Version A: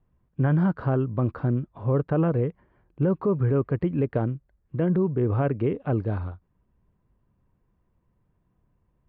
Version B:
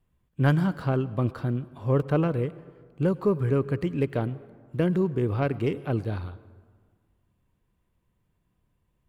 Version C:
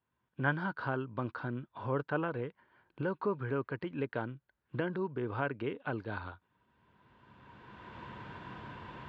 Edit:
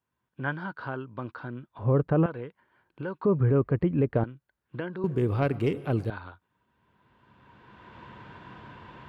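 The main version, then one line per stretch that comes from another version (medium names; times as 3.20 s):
C
1.79–2.26 s: from A
3.25–4.24 s: from A
5.04–6.10 s: from B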